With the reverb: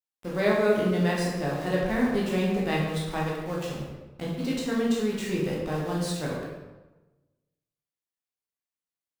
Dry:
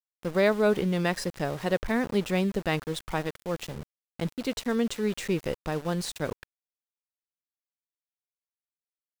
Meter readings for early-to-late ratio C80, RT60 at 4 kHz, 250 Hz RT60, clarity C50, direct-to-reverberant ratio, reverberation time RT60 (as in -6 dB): 3.5 dB, 0.80 s, 1.3 s, 1.0 dB, -5.0 dB, 1.1 s